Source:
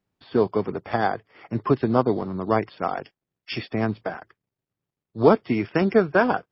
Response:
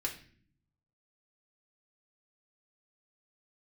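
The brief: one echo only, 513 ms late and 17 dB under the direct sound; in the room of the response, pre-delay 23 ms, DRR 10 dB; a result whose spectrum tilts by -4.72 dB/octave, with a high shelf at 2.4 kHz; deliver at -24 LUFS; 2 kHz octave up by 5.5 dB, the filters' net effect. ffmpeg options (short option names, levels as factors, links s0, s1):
-filter_complex "[0:a]equalizer=f=2000:t=o:g=6,highshelf=f=2400:g=3.5,aecho=1:1:513:0.141,asplit=2[s0][s1];[1:a]atrim=start_sample=2205,adelay=23[s2];[s1][s2]afir=irnorm=-1:irlink=0,volume=0.251[s3];[s0][s3]amix=inputs=2:normalize=0,volume=0.841"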